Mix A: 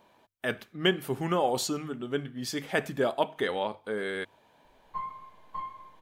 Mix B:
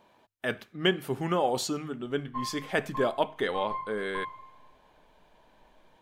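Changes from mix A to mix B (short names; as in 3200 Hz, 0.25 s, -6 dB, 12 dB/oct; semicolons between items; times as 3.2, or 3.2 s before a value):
background: entry -2.60 s; master: add high shelf 9700 Hz -5 dB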